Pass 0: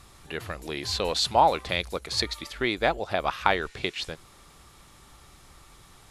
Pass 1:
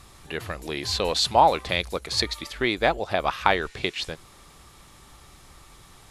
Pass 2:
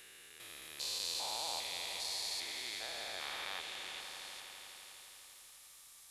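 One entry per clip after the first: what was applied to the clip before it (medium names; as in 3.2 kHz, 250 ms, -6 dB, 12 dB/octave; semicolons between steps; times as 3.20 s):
band-stop 1.4 kHz, Q 27; trim +2.5 dB
spectrogram pixelated in time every 400 ms; pre-emphasis filter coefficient 0.97; echo with a slow build-up 83 ms, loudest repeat 5, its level -13 dB; trim -1.5 dB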